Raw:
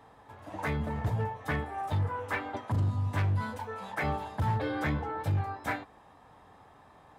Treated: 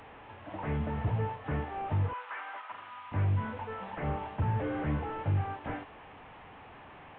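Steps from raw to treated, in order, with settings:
linear delta modulator 16 kbit/s, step −44.5 dBFS
0:02.13–0:03.12: high-pass with resonance 1,200 Hz, resonance Q 1.5

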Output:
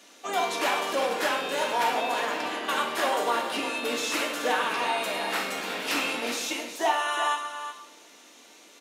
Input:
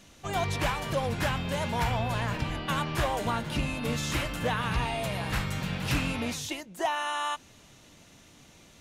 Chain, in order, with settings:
sub-octave generator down 1 octave, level −2 dB
high-pass filter 320 Hz 24 dB per octave
single-tap delay 362 ms −10 dB
on a send at −1.5 dB: convolution reverb RT60 0.80 s, pre-delay 3 ms
on the sum: level +2 dB

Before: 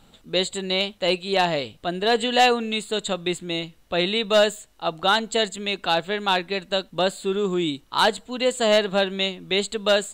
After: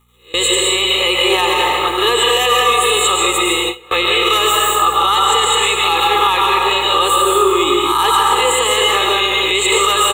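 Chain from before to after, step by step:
peak hold with a rise ahead of every peak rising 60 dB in 0.40 s
RIAA equalisation recording
surface crackle 310 per second −33 dBFS
parametric band 1,200 Hz +15 dB 0.39 octaves
phaser with its sweep stopped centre 1,000 Hz, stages 8
echo through a band-pass that steps 434 ms, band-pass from 180 Hz, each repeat 0.7 octaves, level −10 dB
dense smooth reverb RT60 1.8 s, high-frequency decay 0.6×, pre-delay 100 ms, DRR −1 dB
brickwall limiter −13 dBFS, peak gain reduction 11.5 dB
hum with harmonics 60 Hz, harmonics 4, −45 dBFS −2 dB per octave
comb filter 2.4 ms, depth 46%
noise gate with hold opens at −14 dBFS
level +7.5 dB

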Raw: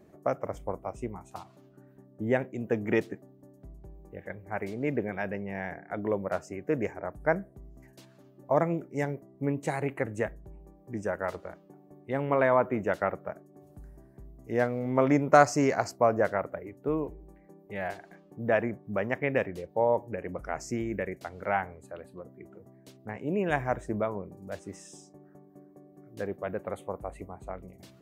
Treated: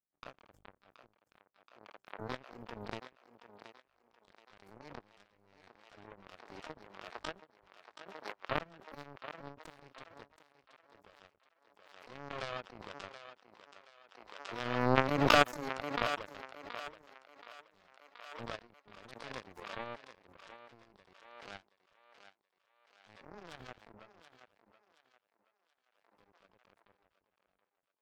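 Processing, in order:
parametric band 3,700 Hz −4 dB 2.5 octaves
notch filter 1,000 Hz, Q 8.2
pitch-shifted copies added +12 semitones −3 dB
power curve on the samples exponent 3
feedback echo with a high-pass in the loop 726 ms, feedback 37%, high-pass 410 Hz, level −10 dB
background raised ahead of every attack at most 39 dB per second

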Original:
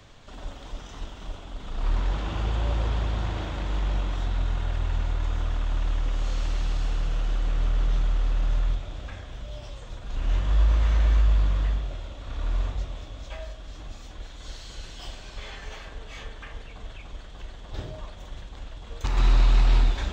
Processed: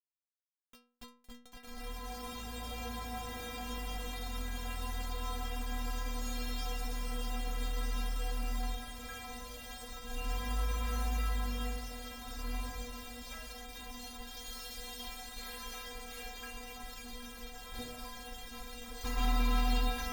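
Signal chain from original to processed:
fade in at the beginning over 4.87 s
bit reduction 7 bits
stiff-string resonator 240 Hz, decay 0.47 s, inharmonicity 0.008
level +12 dB

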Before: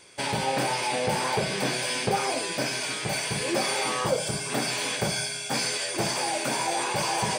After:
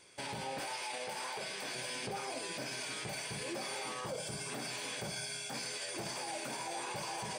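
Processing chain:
0:00.59–0:01.75: high-pass filter 750 Hz 6 dB per octave
brickwall limiter −23.5 dBFS, peak gain reduction 9.5 dB
level −8 dB

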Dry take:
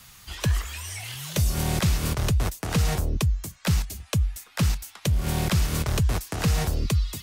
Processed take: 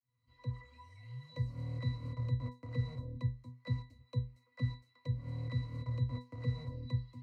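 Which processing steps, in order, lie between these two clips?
fade in at the beginning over 0.74 s
resonances in every octave B, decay 0.28 s

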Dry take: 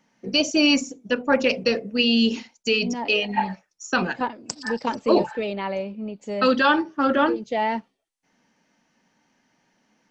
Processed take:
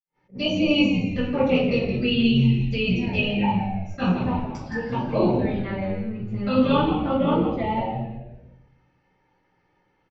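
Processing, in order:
dynamic equaliser 390 Hz, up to −7 dB, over −33 dBFS, Q 1.1
flanger swept by the level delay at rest 2.3 ms, full sweep at −23 dBFS
high-frequency loss of the air 190 metres
echo with shifted repeats 169 ms, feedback 35%, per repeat −98 Hz, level −9 dB
convolution reverb RT60 0.75 s, pre-delay 46 ms
level that may rise only so fast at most 320 dB per second
level +4 dB

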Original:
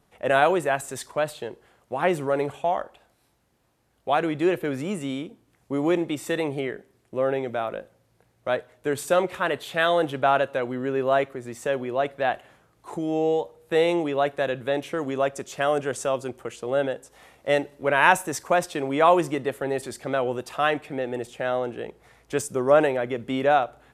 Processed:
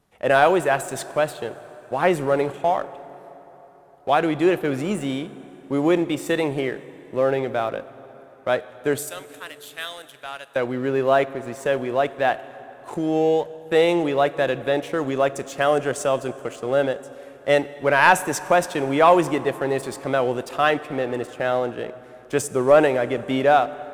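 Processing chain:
0:08.98–0:10.56: first-order pre-emphasis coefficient 0.97
leveller curve on the samples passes 1
dense smooth reverb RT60 4.3 s, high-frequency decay 0.65×, DRR 15.5 dB

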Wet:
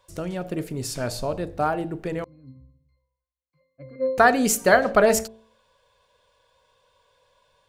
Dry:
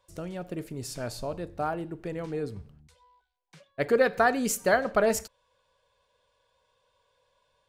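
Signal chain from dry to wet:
hum removal 55.46 Hz, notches 15
0:02.24–0:04.18: resonances in every octave C, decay 0.61 s
level +7 dB

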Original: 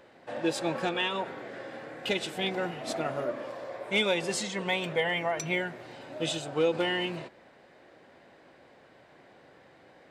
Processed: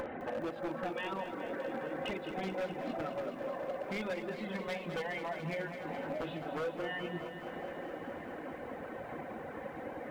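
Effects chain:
upward compression, threshold −37 dBFS
Gaussian smoothing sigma 3.8 samples
downward compressor 4 to 1, threshold −42 dBFS, peak gain reduction 17 dB
convolution reverb RT60 0.50 s, pre-delay 4 ms, DRR 5 dB
reverb reduction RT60 1.8 s
wave folding −37.5 dBFS
feedback echo at a low word length 210 ms, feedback 80%, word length 12 bits, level −9 dB
level +6.5 dB

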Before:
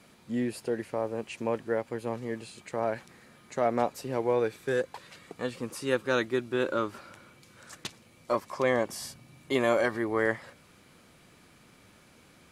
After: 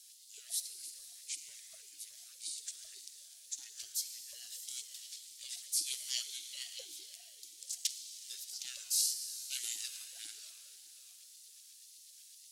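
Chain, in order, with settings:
harmonic generator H 3 −22 dB, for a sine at −11.5 dBFS
auto-filter high-pass saw up 8.1 Hz 590–3,400 Hz
inverse Chebyshev band-stop filter 120–1,600 Hz, stop band 60 dB
parametric band 1,100 Hz +12.5 dB 0.25 octaves
soft clipping −27 dBFS, distortion −33 dB
convolution reverb RT60 3.8 s, pre-delay 38 ms, DRR 7 dB
ring modulator whose carrier an LFO sweeps 510 Hz, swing 40%, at 1.8 Hz
level +15 dB

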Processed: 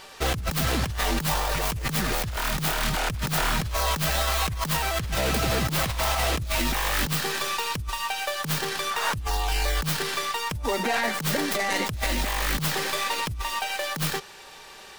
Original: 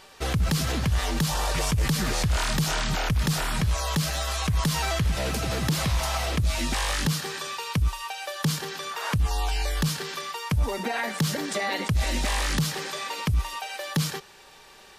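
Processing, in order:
stylus tracing distortion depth 0.32 ms
low-shelf EQ 370 Hz −4 dB
compressor whose output falls as the input rises −29 dBFS, ratio −0.5
level +4 dB

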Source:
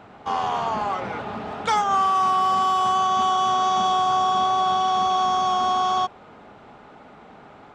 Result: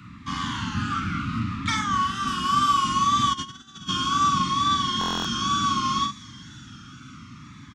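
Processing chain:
sub-octave generator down 1 octave, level +1 dB
0:01.40–0:02.28: high-shelf EQ 6,900 Hz −9 dB
delay with a high-pass on its return 171 ms, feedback 85%, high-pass 3,700 Hz, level −17.5 dB
tape wow and flutter 66 cents
elliptic band-stop filter 280–1,200 Hz, stop band 60 dB
double-tracking delay 44 ms −5.5 dB
0:03.33–0:03.89: compressor whose output falls as the input rises −36 dBFS, ratio −0.5
high-pass filter 70 Hz
buffer that repeats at 0:04.99, samples 1,024, times 10
phaser whose notches keep moving one way falling 0.68 Hz
level +5 dB

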